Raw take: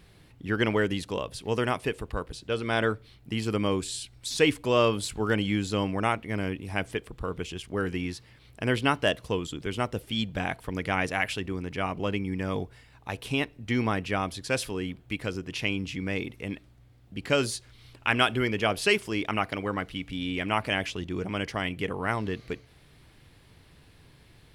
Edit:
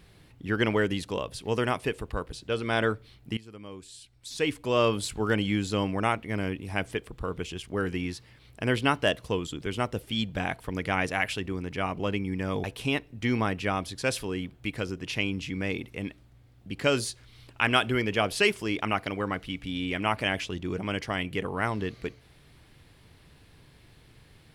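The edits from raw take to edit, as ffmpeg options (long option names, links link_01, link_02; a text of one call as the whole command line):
ffmpeg -i in.wav -filter_complex "[0:a]asplit=3[link_01][link_02][link_03];[link_01]atrim=end=3.37,asetpts=PTS-STARTPTS,afade=type=out:start_time=3.366:duration=0.004:curve=hsin:silence=0.112202[link_04];[link_02]atrim=start=3.37:end=12.642,asetpts=PTS-STARTPTS,afade=type=in:duration=1.55:curve=qua:silence=0.112202[link_05];[link_03]atrim=start=13.098[link_06];[link_04][link_05]concat=n=2:v=0:a=1[link_07];[link_07][link_06]acrossfade=duration=0.004:curve1=hsin:curve2=hsin" out.wav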